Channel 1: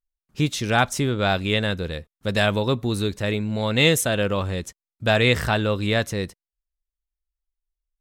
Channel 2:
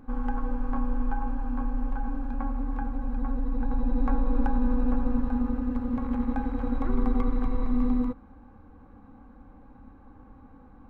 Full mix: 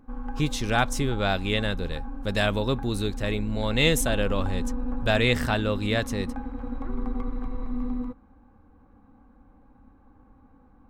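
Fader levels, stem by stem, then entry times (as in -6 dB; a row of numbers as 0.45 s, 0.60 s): -4.0 dB, -5.0 dB; 0.00 s, 0.00 s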